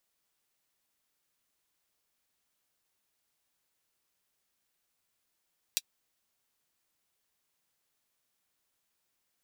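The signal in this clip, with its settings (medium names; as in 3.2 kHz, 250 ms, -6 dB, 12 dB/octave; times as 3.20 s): closed hi-hat, high-pass 3.5 kHz, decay 0.05 s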